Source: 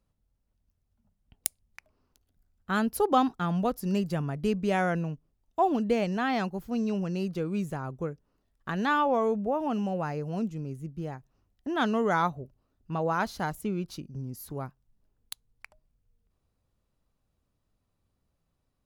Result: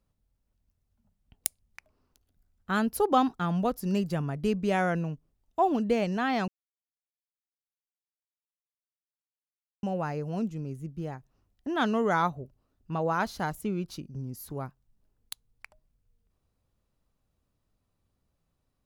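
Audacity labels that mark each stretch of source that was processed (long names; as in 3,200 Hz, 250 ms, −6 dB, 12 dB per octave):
6.480000	9.830000	silence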